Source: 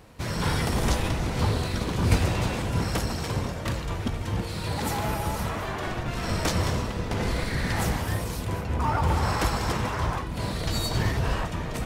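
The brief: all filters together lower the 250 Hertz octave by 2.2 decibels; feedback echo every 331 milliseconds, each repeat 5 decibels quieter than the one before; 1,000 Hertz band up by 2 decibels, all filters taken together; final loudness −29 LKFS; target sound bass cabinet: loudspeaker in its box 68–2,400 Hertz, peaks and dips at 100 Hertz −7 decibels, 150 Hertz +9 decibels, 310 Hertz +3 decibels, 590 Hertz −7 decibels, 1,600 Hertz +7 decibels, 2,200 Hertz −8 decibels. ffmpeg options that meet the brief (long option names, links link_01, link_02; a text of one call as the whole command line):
ffmpeg -i in.wav -af "highpass=frequency=68:width=0.5412,highpass=frequency=68:width=1.3066,equalizer=frequency=100:width_type=q:width=4:gain=-7,equalizer=frequency=150:width_type=q:width=4:gain=9,equalizer=frequency=310:width_type=q:width=4:gain=3,equalizer=frequency=590:width_type=q:width=4:gain=-7,equalizer=frequency=1600:width_type=q:width=4:gain=7,equalizer=frequency=2200:width_type=q:width=4:gain=-8,lowpass=frequency=2400:width=0.5412,lowpass=frequency=2400:width=1.3066,equalizer=frequency=250:width_type=o:gain=-9,equalizer=frequency=1000:width_type=o:gain=3,aecho=1:1:331|662|993|1324|1655|1986|2317:0.562|0.315|0.176|0.0988|0.0553|0.031|0.0173,volume=-1.5dB" out.wav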